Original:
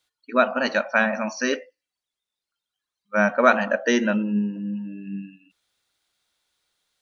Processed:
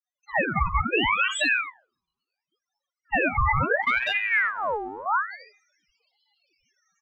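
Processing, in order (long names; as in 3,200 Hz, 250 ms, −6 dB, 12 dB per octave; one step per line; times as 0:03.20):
fade in at the beginning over 1.09 s
comb filter 2 ms, depth 72%
in parallel at +2 dB: downward compressor, threshold −29 dBFS, peak gain reduction 18.5 dB
on the sum: soft clipping −9 dBFS, distortion −15 dB
spectral peaks only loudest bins 4
0:01.55–0:03.22: low-pass filter 1,200 Hz 6 dB per octave
0:03.82–0:05.06: power curve on the samples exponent 1.4
on a send at −23 dB: convolution reverb RT60 0.45 s, pre-delay 25 ms
on the sum: brickwall limiter −21 dBFS, peak gain reduction 11 dB
ring modulator whose carrier an LFO sweeps 1,400 Hz, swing 60%, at 0.72 Hz
level +8 dB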